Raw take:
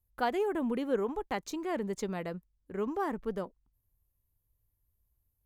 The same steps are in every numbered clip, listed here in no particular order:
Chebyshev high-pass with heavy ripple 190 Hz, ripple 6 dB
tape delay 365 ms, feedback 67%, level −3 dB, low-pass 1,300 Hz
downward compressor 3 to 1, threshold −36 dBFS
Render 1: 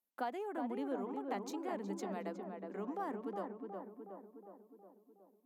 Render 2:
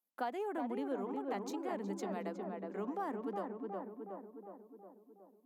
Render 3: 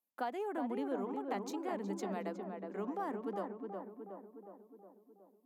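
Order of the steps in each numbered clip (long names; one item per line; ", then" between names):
downward compressor, then Chebyshev high-pass with heavy ripple, then tape delay
Chebyshev high-pass with heavy ripple, then tape delay, then downward compressor
Chebyshev high-pass with heavy ripple, then downward compressor, then tape delay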